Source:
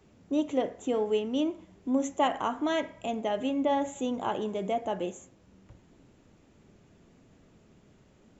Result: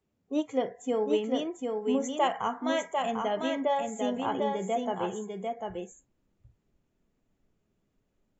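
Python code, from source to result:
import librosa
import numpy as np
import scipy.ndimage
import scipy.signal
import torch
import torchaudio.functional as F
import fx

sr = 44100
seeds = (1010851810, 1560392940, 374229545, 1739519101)

y = fx.noise_reduce_blind(x, sr, reduce_db=19)
y = y + 10.0 ** (-4.0 / 20.0) * np.pad(y, (int(747 * sr / 1000.0), 0))[:len(y)]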